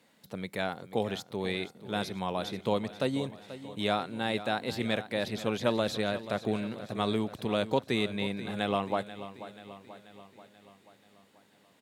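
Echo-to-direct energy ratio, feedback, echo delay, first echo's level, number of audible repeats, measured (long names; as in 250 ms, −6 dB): −12.5 dB, 57%, 485 ms, −14.0 dB, 5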